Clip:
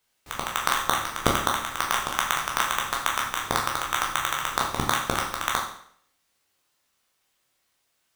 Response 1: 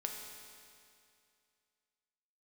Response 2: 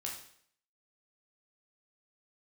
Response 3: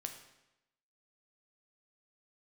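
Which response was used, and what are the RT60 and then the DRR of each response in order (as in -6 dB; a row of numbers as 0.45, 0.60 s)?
2; 2.4, 0.60, 0.90 s; 1.0, -2.0, 4.5 dB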